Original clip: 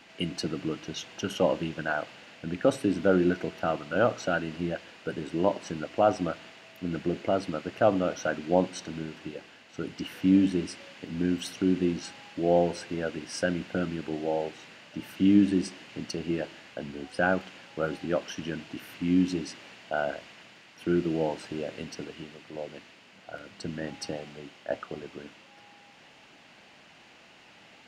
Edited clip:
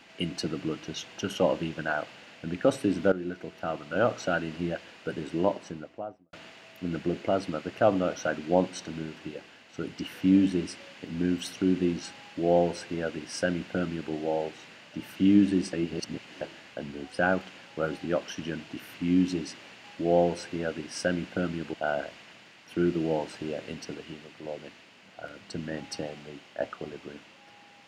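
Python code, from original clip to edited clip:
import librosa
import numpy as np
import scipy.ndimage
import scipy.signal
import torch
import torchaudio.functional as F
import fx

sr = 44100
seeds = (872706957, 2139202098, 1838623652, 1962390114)

y = fx.studio_fade_out(x, sr, start_s=5.32, length_s=1.01)
y = fx.edit(y, sr, fx.fade_in_from(start_s=3.12, length_s=1.04, floor_db=-14.0),
    fx.duplicate(start_s=12.22, length_s=1.9, to_s=19.84),
    fx.reverse_span(start_s=15.73, length_s=0.68), tone=tone)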